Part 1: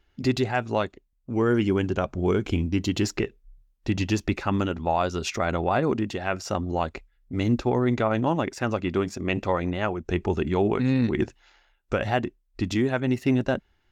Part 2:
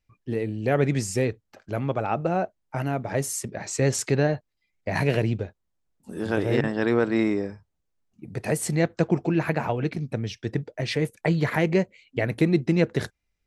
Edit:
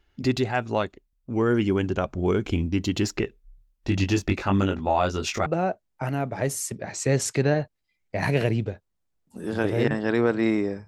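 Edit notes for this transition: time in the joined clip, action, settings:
part 1
3.85–5.46 s: doubling 21 ms -4 dB
5.46 s: go over to part 2 from 2.19 s

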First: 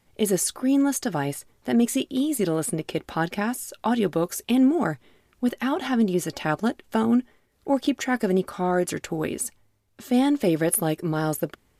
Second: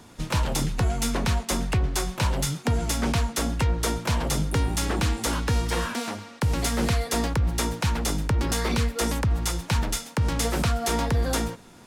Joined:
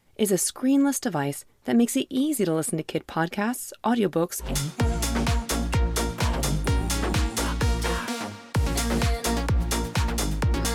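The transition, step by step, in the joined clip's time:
first
4.47 s: go over to second from 2.34 s, crossfade 0.16 s

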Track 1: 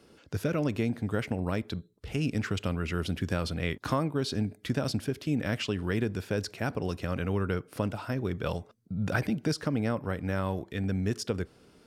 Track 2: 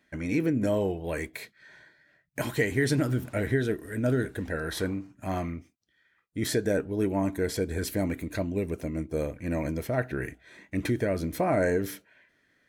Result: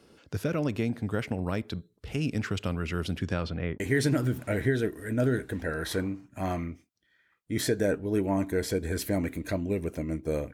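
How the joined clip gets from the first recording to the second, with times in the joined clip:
track 1
3.17–3.80 s: low-pass 12 kHz -> 1 kHz
3.80 s: go over to track 2 from 2.66 s

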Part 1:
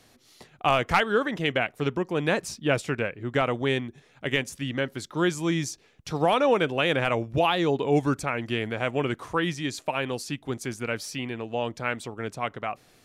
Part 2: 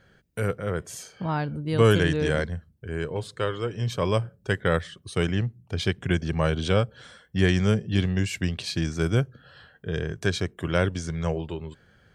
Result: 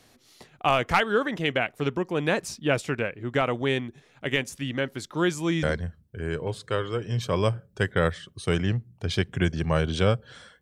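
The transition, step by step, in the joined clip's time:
part 1
5.63 s: go over to part 2 from 2.32 s

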